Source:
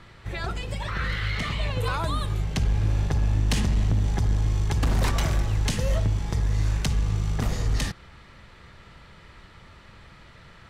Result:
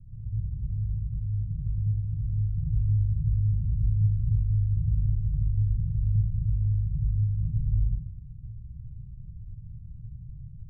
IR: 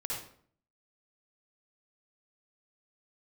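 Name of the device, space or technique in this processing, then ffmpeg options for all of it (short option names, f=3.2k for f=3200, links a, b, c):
club heard from the street: -filter_complex "[0:a]alimiter=level_in=5dB:limit=-24dB:level=0:latency=1:release=248,volume=-5dB,lowpass=f=140:w=0.5412,lowpass=f=140:w=1.3066[a];[1:a]atrim=start_sample=2205[b];[a][b]afir=irnorm=-1:irlink=0,volume=7.5dB"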